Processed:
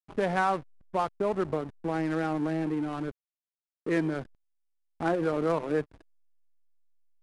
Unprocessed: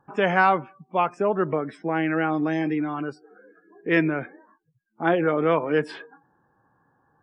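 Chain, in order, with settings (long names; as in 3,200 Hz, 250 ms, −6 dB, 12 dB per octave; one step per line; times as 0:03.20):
low-pass filter 1,600 Hz 12 dB per octave
downward compressor 1.5 to 1, threshold −32 dBFS, peak gain reduction 6.5 dB
slack as between gear wheels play −32 dBFS
IMA ADPCM 88 kbit/s 22,050 Hz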